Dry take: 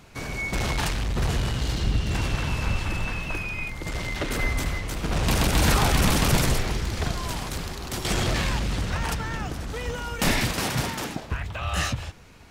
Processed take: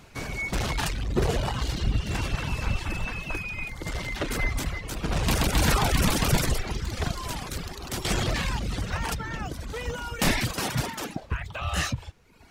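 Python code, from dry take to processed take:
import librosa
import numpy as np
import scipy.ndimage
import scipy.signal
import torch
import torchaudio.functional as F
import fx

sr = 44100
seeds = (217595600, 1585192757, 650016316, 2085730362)

y = fx.dereverb_blind(x, sr, rt60_s=0.92)
y = fx.peak_eq(y, sr, hz=fx.line((1.11, 290.0), (1.63, 1200.0)), db=12.0, octaves=0.9, at=(1.11, 1.63), fade=0.02)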